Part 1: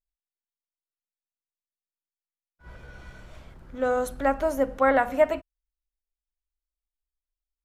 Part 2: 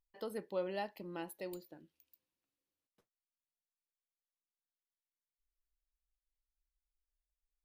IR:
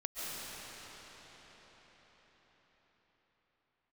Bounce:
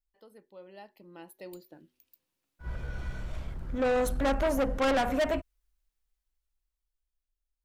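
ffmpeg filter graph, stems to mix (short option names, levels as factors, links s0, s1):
-filter_complex "[0:a]lowshelf=f=170:g=9,asoftclip=type=tanh:threshold=0.0501,volume=0.708[s0];[1:a]bandreject=f=124.5:t=h:w=4,bandreject=f=249:t=h:w=4,bandreject=f=373.5:t=h:w=4,dynaudnorm=f=590:g=5:m=6.31,volume=0.211[s1];[s0][s1]amix=inputs=2:normalize=0,dynaudnorm=f=220:g=17:m=2"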